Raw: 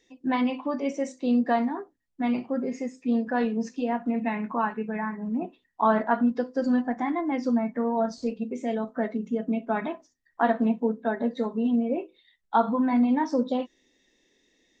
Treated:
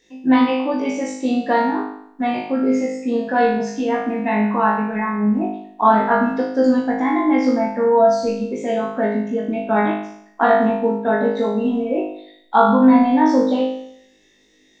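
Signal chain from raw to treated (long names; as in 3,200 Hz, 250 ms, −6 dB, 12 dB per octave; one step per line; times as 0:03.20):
flutter between parallel walls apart 3.3 metres, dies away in 0.7 s
level +5 dB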